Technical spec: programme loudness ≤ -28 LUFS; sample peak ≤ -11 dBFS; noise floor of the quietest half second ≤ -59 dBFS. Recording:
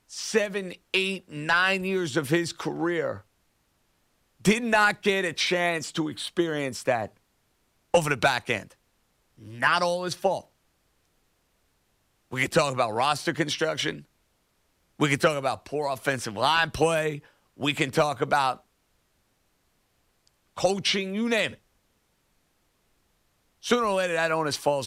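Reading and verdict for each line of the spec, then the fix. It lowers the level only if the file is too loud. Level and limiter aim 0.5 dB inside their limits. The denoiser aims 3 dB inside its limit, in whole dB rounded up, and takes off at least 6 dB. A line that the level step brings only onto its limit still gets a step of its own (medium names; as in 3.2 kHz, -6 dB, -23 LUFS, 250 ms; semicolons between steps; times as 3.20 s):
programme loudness -25.5 LUFS: fail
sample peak -9.5 dBFS: fail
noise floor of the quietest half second -70 dBFS: pass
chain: trim -3 dB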